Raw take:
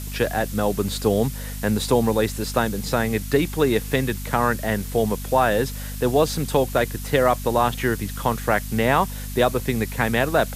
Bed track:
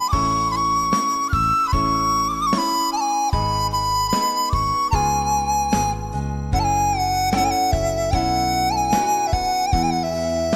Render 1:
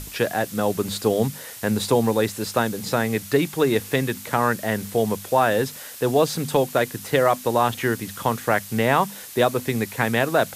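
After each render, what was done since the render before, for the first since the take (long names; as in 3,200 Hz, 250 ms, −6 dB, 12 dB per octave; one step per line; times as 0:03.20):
mains-hum notches 50/100/150/200/250 Hz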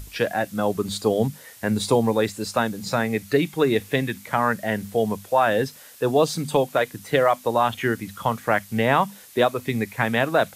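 noise reduction from a noise print 8 dB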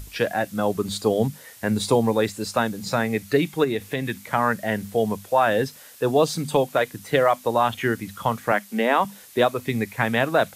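0:03.64–0:04.06: downward compressor 2 to 1, threshold −24 dBFS
0:08.52–0:09.05: elliptic high-pass filter 200 Hz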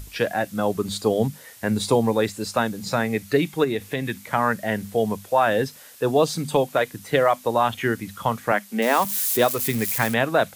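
0:08.82–0:10.14: spike at every zero crossing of −20 dBFS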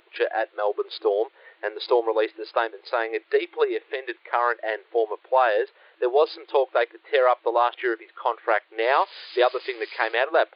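adaptive Wiener filter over 9 samples
brick-wall band-pass 330–5,000 Hz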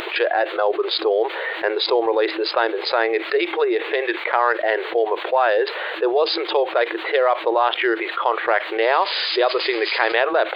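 envelope flattener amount 70%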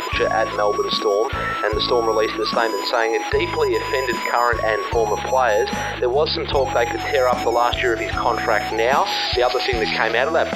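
mix in bed track −7.5 dB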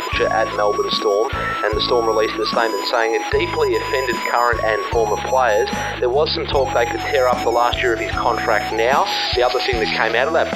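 level +1.5 dB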